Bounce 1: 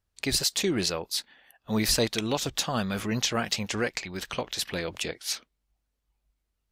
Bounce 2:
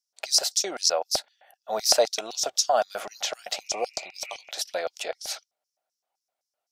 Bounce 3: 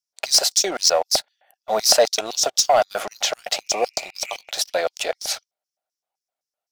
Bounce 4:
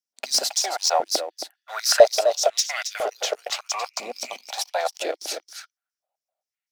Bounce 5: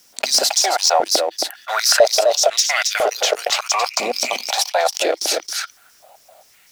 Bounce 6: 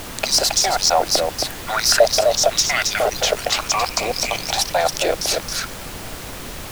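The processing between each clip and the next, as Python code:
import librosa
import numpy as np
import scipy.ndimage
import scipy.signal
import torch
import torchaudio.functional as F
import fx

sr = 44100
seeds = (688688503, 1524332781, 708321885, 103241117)

y1 = fx.spec_repair(x, sr, seeds[0], start_s=3.65, length_s=0.83, low_hz=1200.0, high_hz=2900.0, source='before')
y1 = fx.filter_lfo_highpass(y1, sr, shape='square', hz=3.9, low_hz=620.0, high_hz=5500.0, q=5.6)
y1 = fx.small_body(y1, sr, hz=(760.0, 1400.0), ring_ms=30, db=8)
y1 = y1 * librosa.db_to_amplitude(-2.5)
y2 = fx.leveller(y1, sr, passes=2)
y3 = y2 + 10.0 ** (-9.5 / 20.0) * np.pad(y2, (int(271 * sr / 1000.0), 0))[:len(y2)]
y3 = fx.filter_held_highpass(y3, sr, hz=2.0, low_hz=240.0, high_hz=2000.0)
y3 = y3 * librosa.db_to_amplitude(-5.5)
y4 = fx.env_flatten(y3, sr, amount_pct=50)
y4 = y4 * librosa.db_to_amplitude(-1.0)
y5 = fx.dmg_noise_colour(y4, sr, seeds[1], colour='pink', level_db=-31.0)
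y5 = y5 * librosa.db_to_amplitude(-1.0)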